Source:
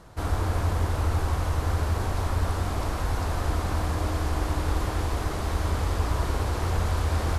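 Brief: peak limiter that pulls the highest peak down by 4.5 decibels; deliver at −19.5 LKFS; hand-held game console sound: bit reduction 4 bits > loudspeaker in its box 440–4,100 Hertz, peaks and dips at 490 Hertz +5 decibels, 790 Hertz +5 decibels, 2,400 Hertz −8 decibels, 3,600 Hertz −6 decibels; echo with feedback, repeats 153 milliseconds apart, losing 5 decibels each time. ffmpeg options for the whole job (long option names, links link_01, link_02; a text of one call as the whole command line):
ffmpeg -i in.wav -af "alimiter=limit=-18dB:level=0:latency=1,aecho=1:1:153|306|459|612|765|918|1071:0.562|0.315|0.176|0.0988|0.0553|0.031|0.0173,acrusher=bits=3:mix=0:aa=0.000001,highpass=440,equalizer=frequency=490:width_type=q:width=4:gain=5,equalizer=frequency=790:width_type=q:width=4:gain=5,equalizer=frequency=2400:width_type=q:width=4:gain=-8,equalizer=frequency=3600:width_type=q:width=4:gain=-6,lowpass=frequency=4100:width=0.5412,lowpass=frequency=4100:width=1.3066,volume=9dB" out.wav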